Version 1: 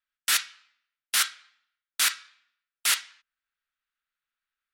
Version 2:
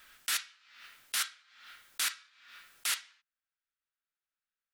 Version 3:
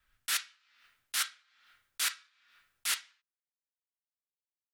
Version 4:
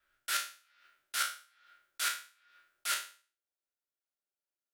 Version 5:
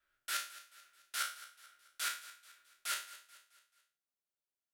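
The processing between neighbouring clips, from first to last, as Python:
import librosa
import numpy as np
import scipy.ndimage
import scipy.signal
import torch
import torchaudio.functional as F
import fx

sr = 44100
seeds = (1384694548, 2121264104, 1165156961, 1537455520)

y1 = fx.pre_swell(x, sr, db_per_s=65.0)
y1 = F.gain(torch.from_numpy(y1), -8.5).numpy()
y2 = fx.band_widen(y1, sr, depth_pct=70)
y2 = F.gain(torch.from_numpy(y2), -2.5).numpy()
y3 = fx.spec_trails(y2, sr, decay_s=0.39)
y3 = fx.low_shelf(y3, sr, hz=210.0, db=-11.0)
y3 = fx.small_body(y3, sr, hz=(370.0, 580.0, 1400.0), ring_ms=30, db=12)
y3 = F.gain(torch.from_numpy(y3), -4.5).numpy()
y4 = fx.echo_feedback(y3, sr, ms=217, feedback_pct=46, wet_db=-16.5)
y4 = F.gain(torch.from_numpy(y4), -4.5).numpy()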